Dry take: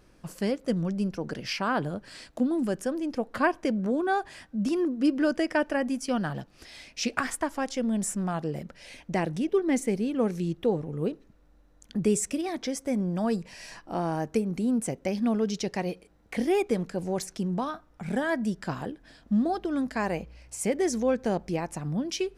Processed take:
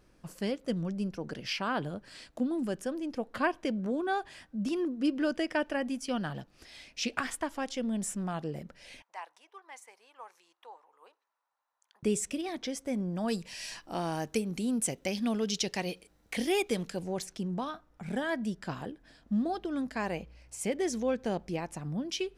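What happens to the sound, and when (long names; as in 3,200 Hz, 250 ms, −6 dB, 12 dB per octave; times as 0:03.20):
0:09.02–0:12.03: four-pole ladder high-pass 860 Hz, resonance 65%
0:13.28–0:16.99: high-shelf EQ 2,700 Hz +10.5 dB
whole clip: dynamic equaliser 3,200 Hz, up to +6 dB, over −51 dBFS, Q 1.8; level −5 dB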